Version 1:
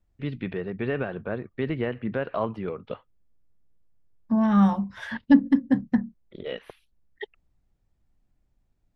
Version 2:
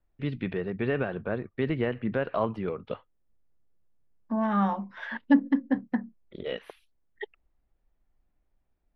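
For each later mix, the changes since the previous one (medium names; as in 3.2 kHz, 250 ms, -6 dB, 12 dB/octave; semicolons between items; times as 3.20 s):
second voice: add band-pass 310–2800 Hz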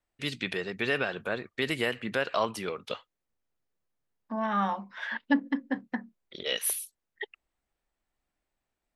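first voice: remove distance through air 380 m; master: add tilt EQ +3 dB/octave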